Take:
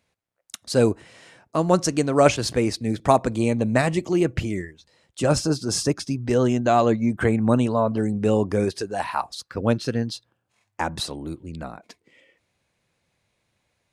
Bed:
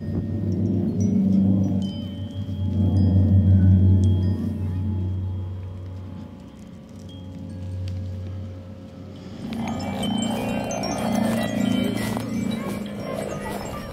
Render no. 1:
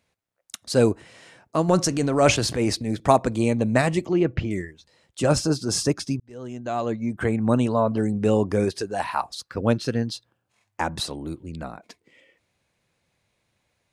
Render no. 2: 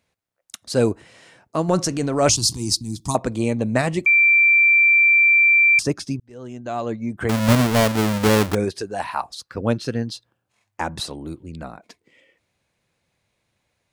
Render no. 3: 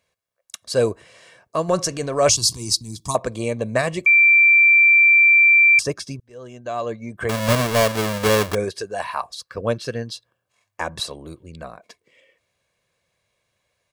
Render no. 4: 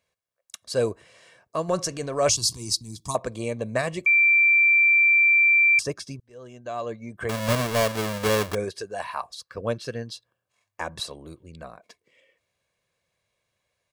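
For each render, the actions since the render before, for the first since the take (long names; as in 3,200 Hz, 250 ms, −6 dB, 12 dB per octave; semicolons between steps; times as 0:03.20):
0:01.68–0:02.94: transient designer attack −6 dB, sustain +5 dB; 0:04.06–0:04.51: high-frequency loss of the air 190 metres; 0:06.20–0:07.74: fade in
0:02.29–0:03.15: drawn EQ curve 130 Hz 0 dB, 350 Hz −6 dB, 530 Hz −28 dB, 1,000 Hz −4 dB, 1,600 Hz −27 dB, 4,900 Hz +9 dB; 0:04.06–0:05.79: beep over 2,350 Hz −11 dBFS; 0:07.29–0:08.55: each half-wave held at its own peak
low-shelf EQ 220 Hz −7 dB; comb filter 1.8 ms, depth 47%
level −5 dB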